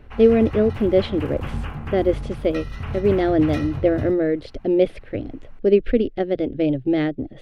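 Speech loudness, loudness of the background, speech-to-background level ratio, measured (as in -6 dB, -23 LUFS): -21.0 LUFS, -31.0 LUFS, 10.0 dB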